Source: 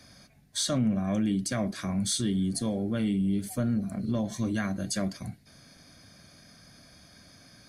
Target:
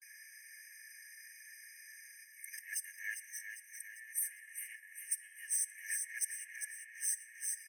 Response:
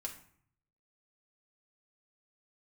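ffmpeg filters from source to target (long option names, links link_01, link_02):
-filter_complex "[0:a]areverse,alimiter=limit=-22.5dB:level=0:latency=1:release=89,aeval=exprs='0.075*(cos(1*acos(clip(val(0)/0.075,-1,1)))-cos(1*PI/2))+0.00531*(cos(7*acos(clip(val(0)/0.075,-1,1)))-cos(7*PI/2))':channel_layout=same,asoftclip=type=tanh:threshold=-30dB,aecho=1:1:2.8:0.75,aecho=1:1:400|800|1200|1600|2000|2400:0.422|0.215|0.11|0.0559|0.0285|0.0145,asplit=2[link_01][link_02];[1:a]atrim=start_sample=2205,asetrate=30870,aresample=44100[link_03];[link_02][link_03]afir=irnorm=-1:irlink=0,volume=-13.5dB[link_04];[link_01][link_04]amix=inputs=2:normalize=0,acompressor=threshold=-42dB:ratio=2.5,asuperstop=centerf=3800:order=4:qfactor=0.54,afftfilt=real='re*eq(mod(floor(b*sr/1024/1600),2),1)':imag='im*eq(mod(floor(b*sr/1024/1600),2),1)':win_size=1024:overlap=0.75,volume=17.5dB"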